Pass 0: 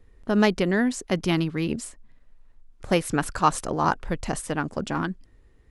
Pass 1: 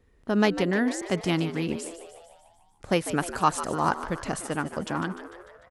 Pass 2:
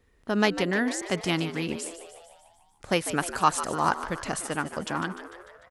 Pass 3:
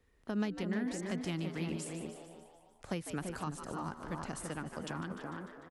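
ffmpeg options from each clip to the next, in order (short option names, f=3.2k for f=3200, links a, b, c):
-filter_complex "[0:a]highpass=f=78:p=1,asplit=2[a][b];[b]asplit=7[c][d][e][f][g][h][i];[c]adelay=149,afreqshift=86,volume=-12.5dB[j];[d]adelay=298,afreqshift=172,volume=-17.1dB[k];[e]adelay=447,afreqshift=258,volume=-21.7dB[l];[f]adelay=596,afreqshift=344,volume=-26.2dB[m];[g]adelay=745,afreqshift=430,volume=-30.8dB[n];[h]adelay=894,afreqshift=516,volume=-35.4dB[o];[i]adelay=1043,afreqshift=602,volume=-40dB[p];[j][k][l][m][n][o][p]amix=inputs=7:normalize=0[q];[a][q]amix=inputs=2:normalize=0,volume=-2dB"
-af "tiltshelf=f=810:g=-3"
-filter_complex "[0:a]asplit=2[a][b];[b]adelay=334,lowpass=f=950:p=1,volume=-5dB,asplit=2[c][d];[d]adelay=334,lowpass=f=950:p=1,volume=0.2,asplit=2[e][f];[f]adelay=334,lowpass=f=950:p=1,volume=0.2[g];[c][e][g]amix=inputs=3:normalize=0[h];[a][h]amix=inputs=2:normalize=0,acrossover=split=270[i][j];[j]acompressor=threshold=-33dB:ratio=10[k];[i][k]amix=inputs=2:normalize=0,volume=-6dB"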